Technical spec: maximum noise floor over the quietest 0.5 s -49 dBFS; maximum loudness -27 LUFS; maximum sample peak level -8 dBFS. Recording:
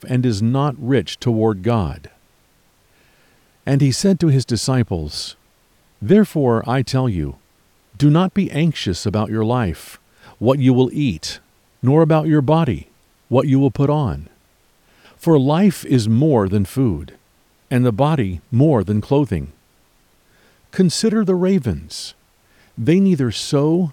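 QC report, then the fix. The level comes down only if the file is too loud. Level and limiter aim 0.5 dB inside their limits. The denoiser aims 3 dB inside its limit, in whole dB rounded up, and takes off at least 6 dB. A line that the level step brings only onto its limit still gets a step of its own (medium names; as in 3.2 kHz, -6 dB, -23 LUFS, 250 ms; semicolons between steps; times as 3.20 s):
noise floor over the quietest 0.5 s -57 dBFS: pass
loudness -17.5 LUFS: fail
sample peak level -3.5 dBFS: fail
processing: trim -10 dB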